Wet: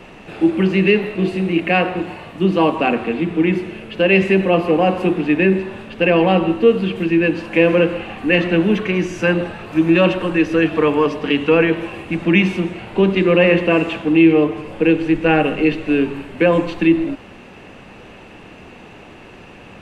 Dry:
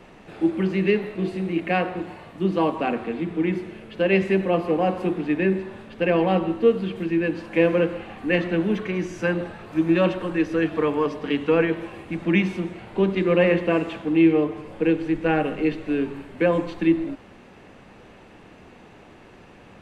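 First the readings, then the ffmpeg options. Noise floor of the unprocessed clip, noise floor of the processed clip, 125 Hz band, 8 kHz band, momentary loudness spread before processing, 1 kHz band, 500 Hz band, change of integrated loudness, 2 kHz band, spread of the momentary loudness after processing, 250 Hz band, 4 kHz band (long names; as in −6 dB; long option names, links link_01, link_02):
−48 dBFS, −40 dBFS, +6.5 dB, can't be measured, 9 LU, +6.5 dB, +6.0 dB, +6.5 dB, +8.5 dB, 8 LU, +6.5 dB, +10.0 dB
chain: -filter_complex "[0:a]equalizer=frequency=2700:width_type=o:width=0.3:gain=6.5,asplit=2[link_01][link_02];[link_02]alimiter=limit=-14dB:level=0:latency=1:release=32,volume=-0.5dB[link_03];[link_01][link_03]amix=inputs=2:normalize=0,volume=1.5dB"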